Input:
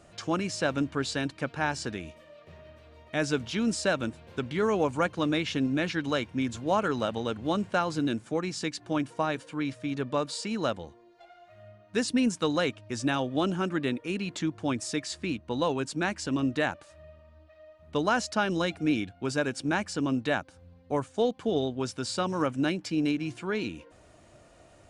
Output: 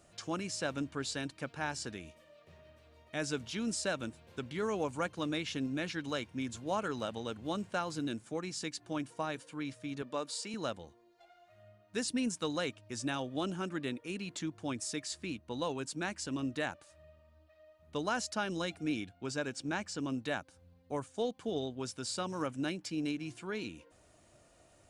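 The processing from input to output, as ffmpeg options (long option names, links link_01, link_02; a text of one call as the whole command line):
ffmpeg -i in.wav -filter_complex "[0:a]asettb=1/sr,asplit=3[link_01][link_02][link_03];[link_01]atrim=end=10.024[link_04];[link_02]atrim=start=10.02:end=10.54,asetpts=PTS-STARTPTS,afade=type=in:duration=0.004:curve=qsin,afade=type=out:start_time=0.516:duration=0.004:curve=qsin,highpass=220[link_05];[link_03]atrim=start=10.536[link_06];[link_04][link_05]acrossfade=duration=0.004:curve1=hsin:curve2=qsin[link_07];[link_07][link_06]acrossfade=duration=0.004:curve1=qsin:curve2=hsin,asettb=1/sr,asplit=3[link_08][link_09][link_10];[link_08]atrim=end=19.144[link_11];[link_09]atrim=start=19.14:end=19.99,asetpts=PTS-STARTPTS,afade=type=in:duration=0.004:curve=qsin,afade=type=out:start_time=0.846:duration=0.004:curve=qsin,equalizer=frequency=9800:width_type=o:width=0.27:gain=-11.5[link_12];[link_10]atrim=start=19.986[link_13];[link_11][link_12]acrossfade=duration=0.004:curve1=hsin:curve2=qsin[link_14];[link_14][link_13]acrossfade=duration=0.004:curve1=qsin:curve2=hsin,highshelf=frequency=5900:gain=10,volume=-8.5dB" out.wav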